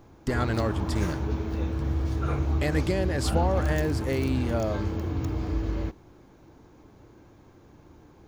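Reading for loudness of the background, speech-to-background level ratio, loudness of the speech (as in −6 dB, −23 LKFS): −30.0 LKFS, 0.0 dB, −30.0 LKFS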